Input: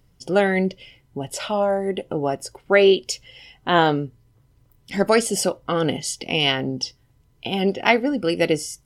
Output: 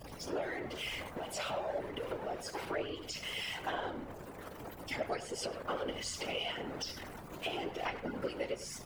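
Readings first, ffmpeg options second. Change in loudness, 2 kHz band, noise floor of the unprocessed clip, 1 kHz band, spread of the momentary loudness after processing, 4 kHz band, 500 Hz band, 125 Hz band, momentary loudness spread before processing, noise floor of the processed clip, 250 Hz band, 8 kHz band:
-18.0 dB, -16.0 dB, -60 dBFS, -15.5 dB, 7 LU, -14.5 dB, -18.0 dB, -19.5 dB, 13 LU, -49 dBFS, -20.0 dB, -15.5 dB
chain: -filter_complex "[0:a]aeval=exprs='val(0)+0.5*0.075*sgn(val(0))':c=same,afftdn=nr=13:nf=-38,highpass=400,agate=range=-33dB:threshold=-37dB:ratio=3:detection=peak,acrossover=split=6500[a][b];[b]acompressor=threshold=-42dB:ratio=4:attack=1:release=60[c];[a][c]amix=inputs=2:normalize=0,equalizer=f=4.9k:t=o:w=1.7:g=-4.5,acompressor=threshold=-27dB:ratio=6,aeval=exprs='val(0)+0.00708*(sin(2*PI*60*n/s)+sin(2*PI*2*60*n/s)/2+sin(2*PI*3*60*n/s)/3+sin(2*PI*4*60*n/s)/4+sin(2*PI*5*60*n/s)/5)':c=same,flanger=delay=3.4:depth=5.1:regen=-4:speed=1:shape=sinusoidal,afftfilt=real='hypot(re,im)*cos(2*PI*random(0))':imag='hypot(re,im)*sin(2*PI*random(1))':win_size=512:overlap=0.75,asplit=2[d][e];[e]adelay=100,highpass=300,lowpass=3.4k,asoftclip=type=hard:threshold=-33.5dB,volume=-11dB[f];[d][f]amix=inputs=2:normalize=0,volume=1dB"

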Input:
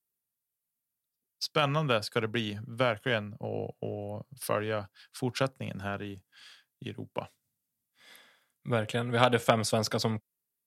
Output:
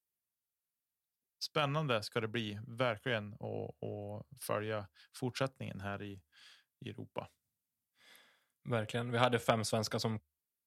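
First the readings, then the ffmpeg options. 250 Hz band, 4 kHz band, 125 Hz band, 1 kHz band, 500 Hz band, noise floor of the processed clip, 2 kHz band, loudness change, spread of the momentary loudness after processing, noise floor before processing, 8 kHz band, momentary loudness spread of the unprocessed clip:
-6.5 dB, -6.5 dB, -6.0 dB, -6.5 dB, -6.5 dB, under -85 dBFS, -6.5 dB, -6.5 dB, 15 LU, under -85 dBFS, -6.5 dB, 15 LU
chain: -af "equalizer=f=74:t=o:w=0.29:g=12.5,volume=-6.5dB"

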